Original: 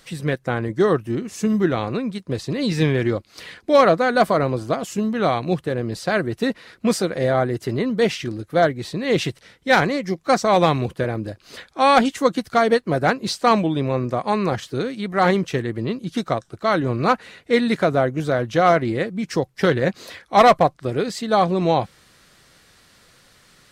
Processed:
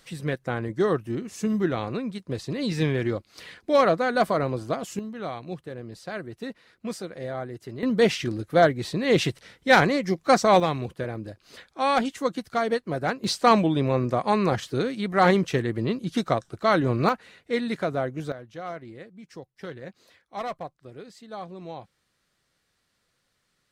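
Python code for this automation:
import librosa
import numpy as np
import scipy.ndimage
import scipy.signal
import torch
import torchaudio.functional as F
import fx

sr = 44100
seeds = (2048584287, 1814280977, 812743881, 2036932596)

y = fx.gain(x, sr, db=fx.steps((0.0, -5.5), (4.99, -13.5), (7.83, -1.0), (10.6, -8.0), (13.24, -1.5), (17.09, -8.5), (18.32, -20.0)))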